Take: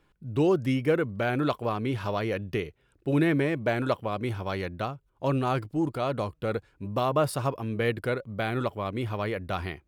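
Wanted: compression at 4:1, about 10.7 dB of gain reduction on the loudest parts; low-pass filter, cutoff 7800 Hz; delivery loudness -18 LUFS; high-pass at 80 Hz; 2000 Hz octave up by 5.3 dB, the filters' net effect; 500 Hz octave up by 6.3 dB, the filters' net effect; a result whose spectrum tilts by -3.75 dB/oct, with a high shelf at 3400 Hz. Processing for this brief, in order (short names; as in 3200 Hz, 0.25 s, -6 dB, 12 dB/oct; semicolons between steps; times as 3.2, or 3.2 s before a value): HPF 80 Hz; LPF 7800 Hz; bell 500 Hz +7.5 dB; bell 2000 Hz +9 dB; high shelf 3400 Hz -9 dB; compressor 4:1, threshold -26 dBFS; gain +13 dB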